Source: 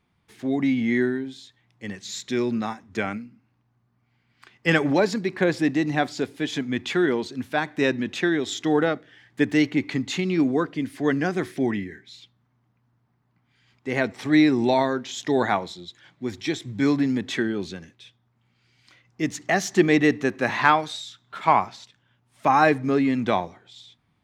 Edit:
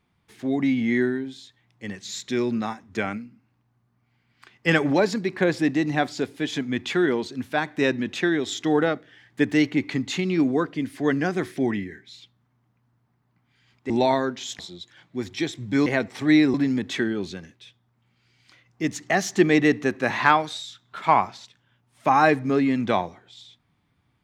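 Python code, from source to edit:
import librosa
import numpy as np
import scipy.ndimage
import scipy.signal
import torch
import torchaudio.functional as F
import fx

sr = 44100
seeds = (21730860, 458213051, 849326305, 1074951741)

y = fx.edit(x, sr, fx.move(start_s=13.9, length_s=0.68, to_s=16.93),
    fx.cut(start_s=15.27, length_s=0.39), tone=tone)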